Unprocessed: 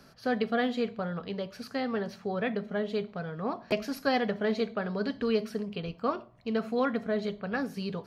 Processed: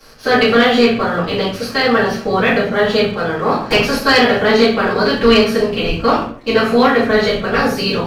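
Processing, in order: spectral peaks clipped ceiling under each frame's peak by 15 dB; simulated room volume 48 m³, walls mixed, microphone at 2.3 m; waveshaping leveller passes 1; trim +2 dB

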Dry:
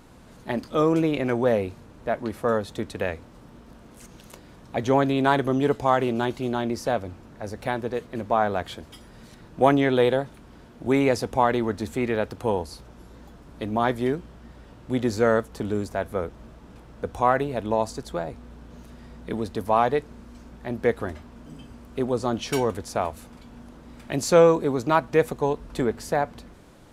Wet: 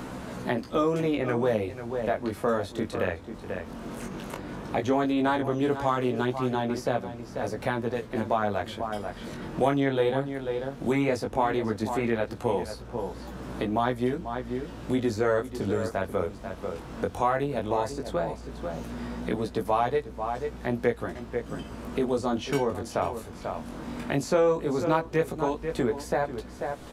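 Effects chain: chorus 0.15 Hz, delay 15.5 ms, depth 6.6 ms; echo from a far wall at 84 m, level -12 dB; three bands compressed up and down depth 70%

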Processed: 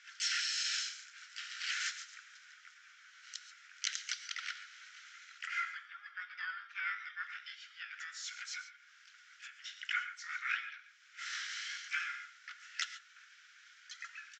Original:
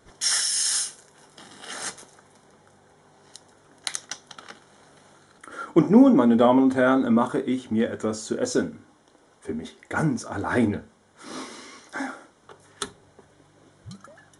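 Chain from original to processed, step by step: low-pass that closes with the level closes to 3 kHz, closed at -17.5 dBFS; harmony voices -4 st -5 dB, +7 st -1 dB; compression 2.5:1, threshold -35 dBFS, peak gain reduction 18.5 dB; Chebyshev band-pass 1.4–7.3 kHz, order 5; distance through air 55 m; gated-style reverb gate 160 ms rising, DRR 11 dB; trim +3 dB

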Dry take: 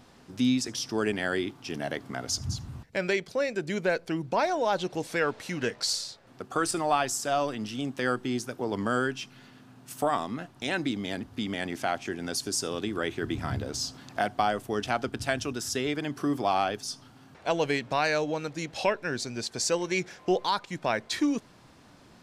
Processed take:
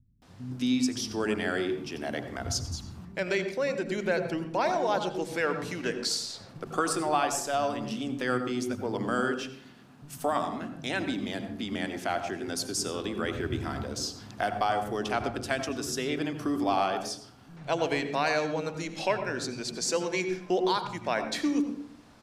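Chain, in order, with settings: 6.02–6.61 s: transient shaper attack +3 dB, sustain +8 dB; bands offset in time lows, highs 220 ms, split 160 Hz; on a send at -8 dB: reverberation RT60 0.60 s, pre-delay 76 ms; on the sum: trim -1.5 dB

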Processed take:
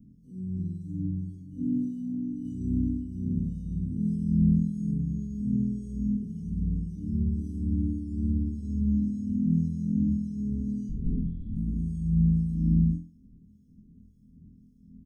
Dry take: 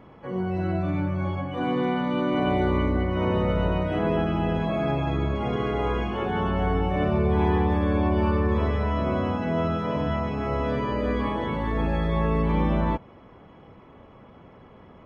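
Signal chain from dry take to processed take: harmonic tremolo 1.8 Hz, depth 70%, crossover 640 Hz; 10.89–11.56 s: LPC vocoder at 8 kHz whisper; inverse Chebyshev band-stop 620–2600 Hz, stop band 60 dB; flutter echo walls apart 4.1 m, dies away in 0.35 s; 1.92–2.45 s: compression 2.5:1, threshold -34 dBFS, peak gain reduction 6 dB; comb 4.4 ms, depth 48%

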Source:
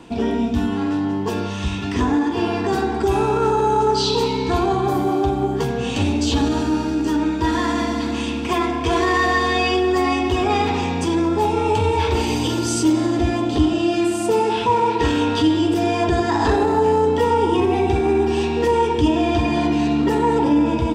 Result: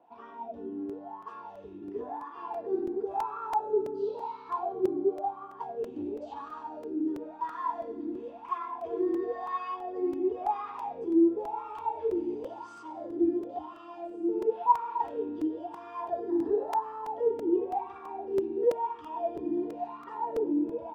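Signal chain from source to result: wah-wah 0.96 Hz 330–1200 Hz, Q 14; crackling interface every 0.33 s, samples 128, repeat, from 0.89 s

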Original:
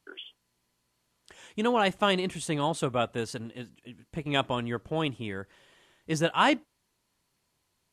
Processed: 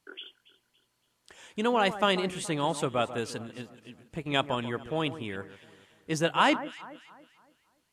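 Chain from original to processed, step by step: bass shelf 170 Hz -4.5 dB; echo whose repeats swap between lows and highs 141 ms, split 1.7 kHz, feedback 60%, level -13 dB

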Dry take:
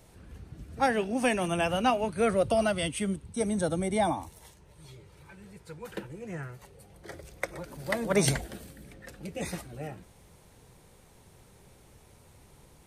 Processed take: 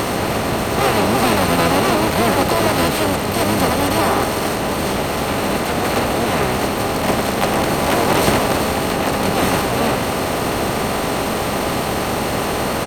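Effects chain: spectral levelling over time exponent 0.2; harmony voices -12 st -2 dB, -3 st -10 dB, +7 st -1 dB; trim -1.5 dB

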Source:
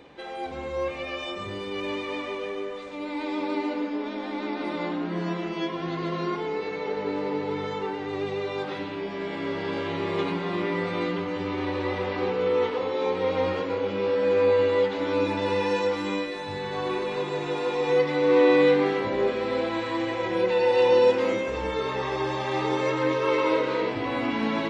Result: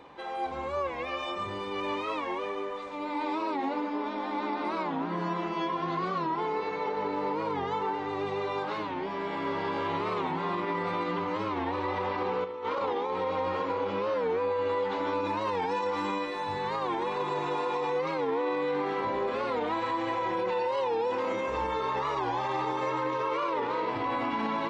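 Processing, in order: 7.14–7.59 s: crackle 62 per s -47 dBFS; 12.44–13.10 s: compressor with a negative ratio -28 dBFS, ratio -0.5; peaking EQ 1 kHz +11 dB 0.83 oct; peak limiter -18 dBFS, peak gain reduction 11 dB; warped record 45 rpm, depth 160 cents; trim -4 dB

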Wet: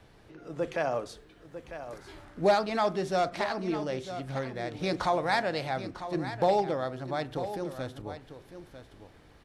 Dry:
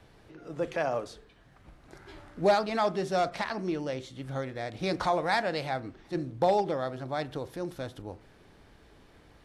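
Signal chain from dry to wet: 1.09–2.25 s: treble shelf 8.1 kHz +7 dB; delay 949 ms -11.5 dB

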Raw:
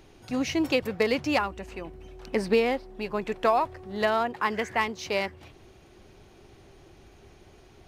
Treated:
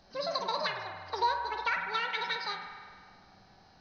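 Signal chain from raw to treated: knee-point frequency compression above 1.8 kHz 4:1; feedback comb 92 Hz, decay 0.62 s, harmonics all, mix 70%; on a send: feedback echo behind a band-pass 106 ms, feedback 82%, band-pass 590 Hz, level -7 dB; on the sum: wide varispeed 2.07×

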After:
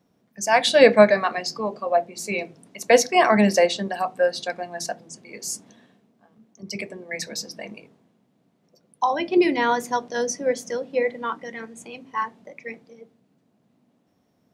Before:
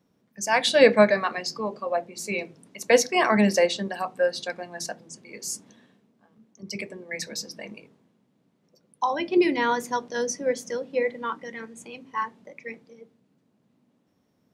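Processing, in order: peaking EQ 700 Hz +6 dB 0.25 oct; trim +2 dB

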